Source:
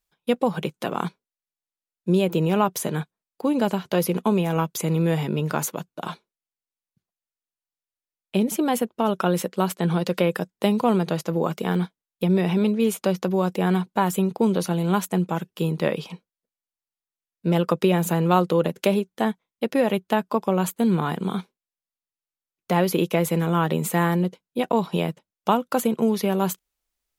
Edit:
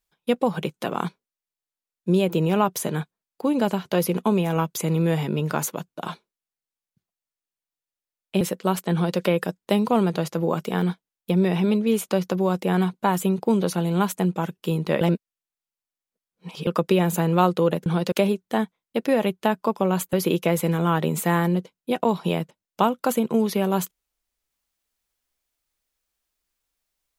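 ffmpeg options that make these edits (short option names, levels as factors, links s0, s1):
-filter_complex "[0:a]asplit=7[s0][s1][s2][s3][s4][s5][s6];[s0]atrim=end=8.412[s7];[s1]atrim=start=9.338:end=15.942[s8];[s2]atrim=start=15.938:end=17.602,asetpts=PTS-STARTPTS,areverse[s9];[s3]atrim=start=17.598:end=18.792[s10];[s4]atrim=start=9.858:end=10.122[s11];[s5]atrim=start=18.788:end=20.802[s12];[s6]atrim=start=22.808[s13];[s7][s8]acrossfade=d=0.004:c1=hsin:c2=hsin[s14];[s14][s9]acrossfade=d=0.004:c1=hsin:c2=hsin[s15];[s15][s10]acrossfade=d=0.004:c1=hsin:c2=hsin[s16];[s16][s11]acrossfade=d=0.004:c1=hsin:c2=hsin[s17];[s17][s12]acrossfade=d=0.004:c1=hsin:c2=hsin[s18];[s18][s13]acrossfade=d=0.004:c1=hsin:c2=hsin"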